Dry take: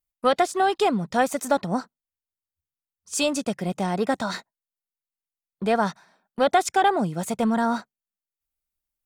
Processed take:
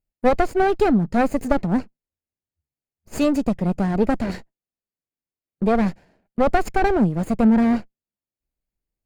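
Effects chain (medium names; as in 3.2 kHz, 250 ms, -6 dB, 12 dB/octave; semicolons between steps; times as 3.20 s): comb filter that takes the minimum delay 0.44 ms; tilt shelf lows +8.5 dB, about 1.2 kHz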